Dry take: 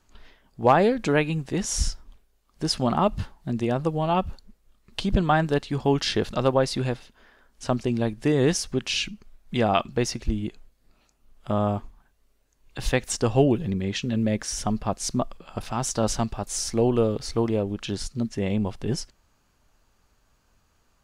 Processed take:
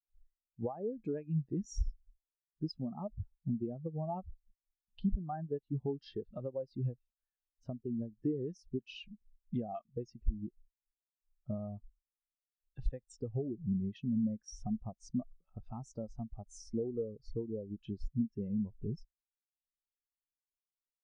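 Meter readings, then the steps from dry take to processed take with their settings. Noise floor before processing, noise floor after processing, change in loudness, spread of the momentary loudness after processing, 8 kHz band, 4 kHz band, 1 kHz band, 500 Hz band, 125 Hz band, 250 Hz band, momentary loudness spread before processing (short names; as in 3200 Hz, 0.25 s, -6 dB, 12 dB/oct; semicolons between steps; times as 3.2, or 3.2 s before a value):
-66 dBFS, under -85 dBFS, -14.5 dB, 11 LU, -26.5 dB, -25.5 dB, -22.0 dB, -16.5 dB, -12.5 dB, -11.5 dB, 10 LU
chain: compressor 20:1, threshold -28 dBFS, peak gain reduction 17 dB; spectral expander 2.5:1; gain -7 dB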